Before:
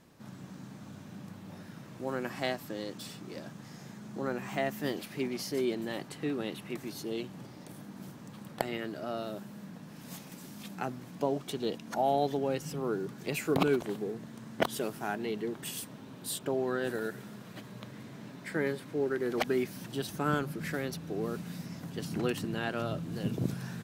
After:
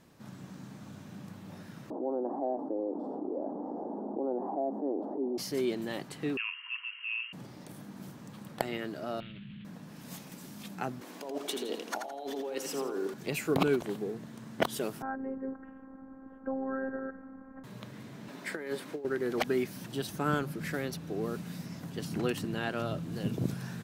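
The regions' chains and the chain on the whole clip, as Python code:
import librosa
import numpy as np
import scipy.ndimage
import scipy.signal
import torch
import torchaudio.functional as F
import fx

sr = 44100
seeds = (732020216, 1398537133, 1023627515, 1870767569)

y = fx.chain(x, sr, fx.ellip_bandpass(low_hz=270.0, high_hz=840.0, order=3, stop_db=50),
    fx.env_flatten(amount_pct=70), at=(1.9, 5.38))
y = fx.chain(y, sr, fx.freq_invert(carrier_hz=3000),
    fx.brickwall_highpass(low_hz=940.0), at=(6.37, 7.33))
y = fx.chain(y, sr, fx.cvsd(bps=16000),
    fx.curve_eq(hz=(160.0, 680.0, 5300.0), db=(0, -29, 13)),
    fx.env_flatten(amount_pct=100), at=(9.2, 9.65))
y = fx.chain(y, sr, fx.highpass(hz=280.0, slope=24),
    fx.over_compress(threshold_db=-37.0, ratio=-1.0),
    fx.echo_feedback(ms=83, feedback_pct=33, wet_db=-6.5), at=(11.01, 13.14))
y = fx.chain(y, sr, fx.low_shelf(hz=120.0, db=7.0),
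    fx.robotise(hz=266.0),
    fx.ellip_lowpass(hz=1600.0, order=4, stop_db=60), at=(15.02, 17.64))
y = fx.chain(y, sr, fx.highpass(hz=250.0, slope=12),
    fx.over_compress(threshold_db=-35.0, ratio=-0.5), at=(18.28, 19.05))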